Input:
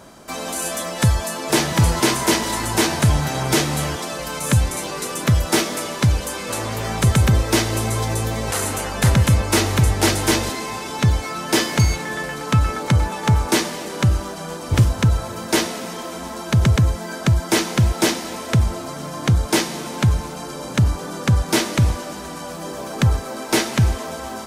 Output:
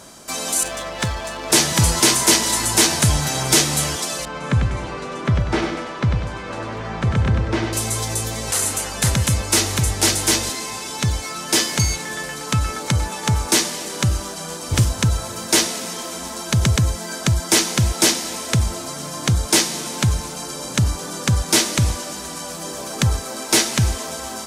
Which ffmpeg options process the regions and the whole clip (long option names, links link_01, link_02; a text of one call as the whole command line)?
ffmpeg -i in.wav -filter_complex "[0:a]asettb=1/sr,asplit=3[link_01][link_02][link_03];[link_01]atrim=end=0.634[link_04];[link_02]atrim=start=0.63:end=1.52,asetpts=PTS-STARTPTS,afade=type=in:duration=0.004:curve=qsin,afade=type=out:start_time=0.886:duration=0.004:curve=qsin,aeval=exprs='val(0)+0.0251*(sin(2*PI*50*n/s)+sin(2*PI*2*50*n/s)/2+sin(2*PI*3*50*n/s)/3+sin(2*PI*4*50*n/s)/4+sin(2*PI*5*50*n/s)/5)':channel_layout=same,adynamicsmooth=sensitivity=6.5:basefreq=1300,bass=frequency=250:gain=-8,treble=frequency=4000:gain=-8[link_05];[link_03]atrim=start=1.516[link_06];[link_04][link_05]acrossfade=duration=0.004:curve1=hsin:curve2=qsin[link_07];[link_07][link_06]acrossfade=duration=0.004:curve1=qsin:curve2=hsin,asettb=1/sr,asplit=3[link_08][link_09][link_10];[link_08]atrim=end=4.254[link_11];[link_09]atrim=start=4.25:end=7.73,asetpts=PTS-STARTPTS,afade=type=in:duration=0.004:curve=qsin,afade=type=out:start_time=3.476:duration=0.004:curve=qsin,lowpass=1900,aecho=1:1:97|194|291|388|485:0.531|0.218|0.0892|0.0366|0.015,atrim=end_sample=153468[link_12];[link_10]atrim=start=7.726[link_13];[link_11][link_12]acrossfade=duration=0.004:curve1=hsin:curve2=qsin[link_14];[link_14][link_13]acrossfade=duration=0.004:curve1=qsin:curve2=hsin,equalizer=frequency=7700:width=0.43:gain=10.5,dynaudnorm=framelen=230:gausssize=31:maxgain=11.5dB,volume=-1dB" out.wav